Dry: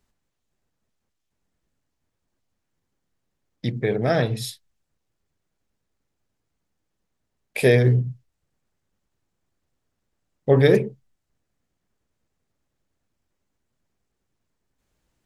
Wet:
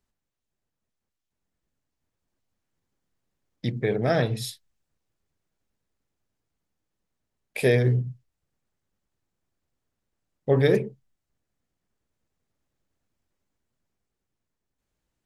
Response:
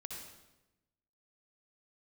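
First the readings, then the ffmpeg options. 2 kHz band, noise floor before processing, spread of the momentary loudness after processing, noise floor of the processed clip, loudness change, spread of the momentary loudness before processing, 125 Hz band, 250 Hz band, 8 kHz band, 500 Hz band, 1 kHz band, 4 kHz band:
−3.5 dB, −78 dBFS, 16 LU, −84 dBFS, −4.0 dB, 17 LU, −4.0 dB, −3.5 dB, −2.5 dB, −4.0 dB, −2.5 dB, −3.0 dB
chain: -af "dynaudnorm=framelen=230:gausssize=17:maxgain=7.5dB,volume=-7.5dB"

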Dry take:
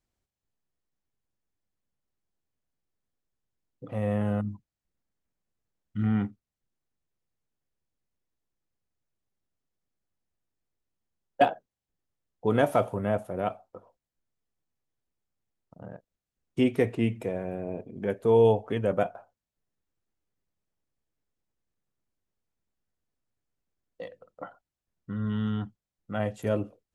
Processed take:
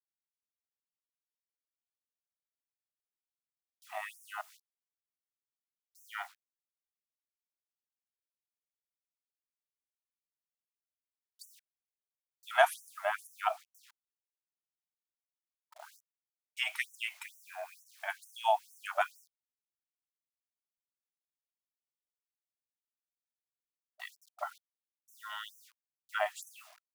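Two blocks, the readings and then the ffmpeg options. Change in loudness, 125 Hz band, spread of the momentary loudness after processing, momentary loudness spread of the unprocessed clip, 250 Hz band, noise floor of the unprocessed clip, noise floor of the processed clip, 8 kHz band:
−7.5 dB, below −40 dB, 20 LU, 21 LU, below −40 dB, below −85 dBFS, below −85 dBFS, can't be measured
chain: -af "acrusher=bits=9:mix=0:aa=0.000001,afftfilt=real='re*gte(b*sr/1024,590*pow(5700/590,0.5+0.5*sin(2*PI*2.2*pts/sr)))':imag='im*gte(b*sr/1024,590*pow(5700/590,0.5+0.5*sin(2*PI*2.2*pts/sr)))':win_size=1024:overlap=0.75,volume=5dB"

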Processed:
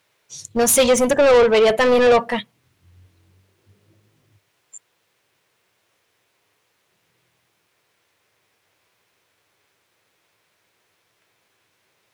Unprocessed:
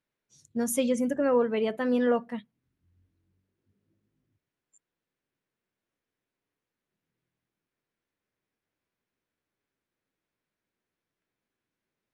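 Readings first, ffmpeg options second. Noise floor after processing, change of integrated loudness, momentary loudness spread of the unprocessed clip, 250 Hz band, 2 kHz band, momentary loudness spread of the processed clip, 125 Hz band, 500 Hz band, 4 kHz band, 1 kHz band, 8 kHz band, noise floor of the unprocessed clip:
−68 dBFS, +11.5 dB, 12 LU, +4.0 dB, +16.0 dB, 13 LU, can't be measured, +13.0 dB, +19.0 dB, +14.5 dB, +16.5 dB, below −85 dBFS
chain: -filter_complex "[0:a]asplit=2[link_01][link_02];[link_02]highpass=frequency=720:poles=1,volume=23dB,asoftclip=type=tanh:threshold=-13dB[link_03];[link_01][link_03]amix=inputs=2:normalize=0,lowpass=frequency=7900:poles=1,volume=-6dB,equalizer=frequency=100:width_type=o:width=0.67:gain=11,equalizer=frequency=250:width_type=o:width=0.67:gain=-8,equalizer=frequency=1600:width_type=o:width=0.67:gain=-4,volume=8dB"

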